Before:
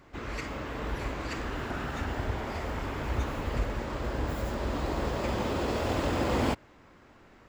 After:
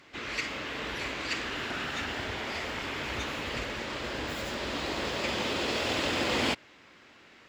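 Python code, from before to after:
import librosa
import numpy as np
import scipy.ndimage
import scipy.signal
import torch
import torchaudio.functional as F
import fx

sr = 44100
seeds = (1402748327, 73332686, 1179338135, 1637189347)

y = fx.weighting(x, sr, curve='D')
y = y * librosa.db_to_amplitude(-1.5)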